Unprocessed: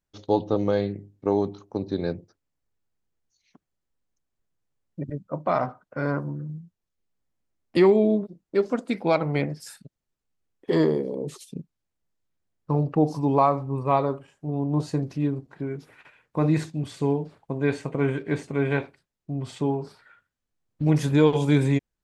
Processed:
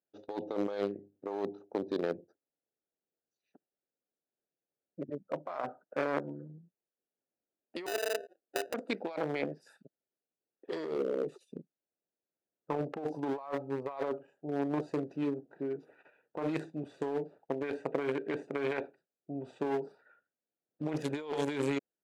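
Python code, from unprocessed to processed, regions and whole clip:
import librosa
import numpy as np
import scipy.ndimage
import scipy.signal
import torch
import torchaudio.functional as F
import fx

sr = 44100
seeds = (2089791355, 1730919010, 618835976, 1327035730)

y = fx.chain(x, sr, fx.highpass(hz=500.0, slope=24),
    fx.sample_hold(seeds[0], rate_hz=1100.0, jitter_pct=0), at=(7.86, 8.74))
y = fx.wiener(y, sr, points=41)
y = scipy.signal.sosfilt(scipy.signal.butter(2, 480.0, 'highpass', fs=sr, output='sos'), y)
y = fx.over_compress(y, sr, threshold_db=-34.0, ratio=-1.0)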